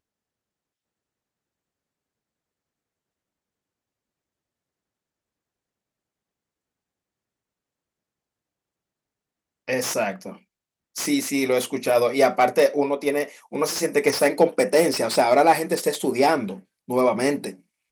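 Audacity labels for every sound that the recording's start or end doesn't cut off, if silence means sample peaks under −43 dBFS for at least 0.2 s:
9.680000	10.370000	sound
10.950000	16.600000	sound
16.880000	17.550000	sound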